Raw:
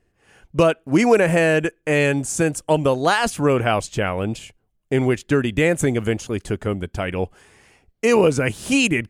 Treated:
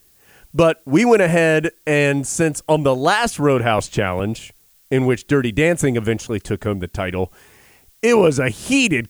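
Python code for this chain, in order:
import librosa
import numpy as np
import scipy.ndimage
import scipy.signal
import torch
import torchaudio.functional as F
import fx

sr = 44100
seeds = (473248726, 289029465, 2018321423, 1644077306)

y = fx.dmg_noise_colour(x, sr, seeds[0], colour='blue', level_db=-57.0)
y = fx.band_squash(y, sr, depth_pct=70, at=(3.78, 4.2))
y = y * 10.0 ** (2.0 / 20.0)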